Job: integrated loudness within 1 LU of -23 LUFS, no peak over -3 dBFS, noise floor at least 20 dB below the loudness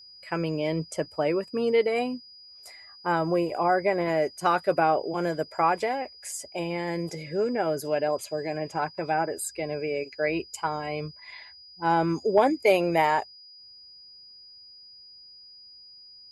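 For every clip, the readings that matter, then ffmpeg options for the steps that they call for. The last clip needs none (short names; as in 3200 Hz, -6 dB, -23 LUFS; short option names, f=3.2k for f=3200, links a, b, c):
steady tone 4900 Hz; tone level -47 dBFS; loudness -27.0 LUFS; peak -9.0 dBFS; loudness target -23.0 LUFS
-> -af "bandreject=f=4.9k:w=30"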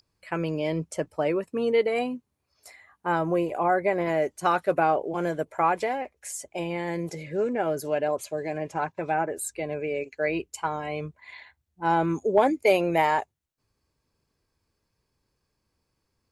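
steady tone none; loudness -27.0 LUFS; peak -9.0 dBFS; loudness target -23.0 LUFS
-> -af "volume=4dB"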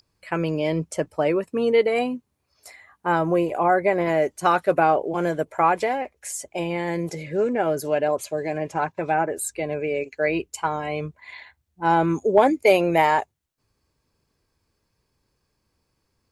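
loudness -23.0 LUFS; peak -5.0 dBFS; noise floor -74 dBFS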